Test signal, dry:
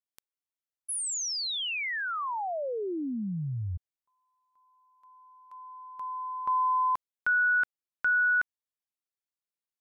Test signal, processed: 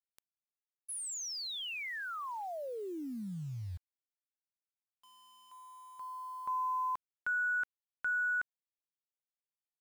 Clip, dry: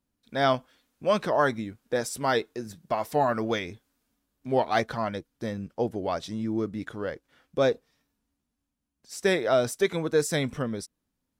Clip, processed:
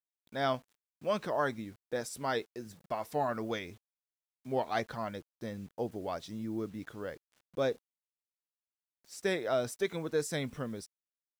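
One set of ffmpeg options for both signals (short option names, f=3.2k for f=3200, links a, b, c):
-af "acrusher=bits=8:mix=0:aa=0.000001,volume=-8dB"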